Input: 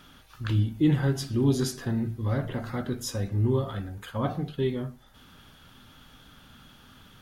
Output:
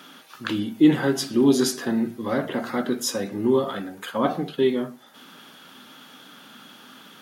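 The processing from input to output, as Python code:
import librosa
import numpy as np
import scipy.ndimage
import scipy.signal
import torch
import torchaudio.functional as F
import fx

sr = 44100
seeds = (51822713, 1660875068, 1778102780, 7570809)

y = scipy.signal.sosfilt(scipy.signal.butter(4, 210.0, 'highpass', fs=sr, output='sos'), x)
y = y * 10.0 ** (8.0 / 20.0)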